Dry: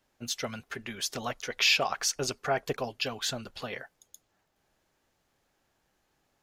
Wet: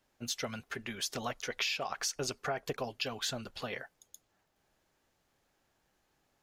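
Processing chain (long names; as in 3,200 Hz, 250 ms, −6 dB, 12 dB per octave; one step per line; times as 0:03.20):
downward compressor 12 to 1, threshold −29 dBFS, peak gain reduction 10.5 dB
level −1.5 dB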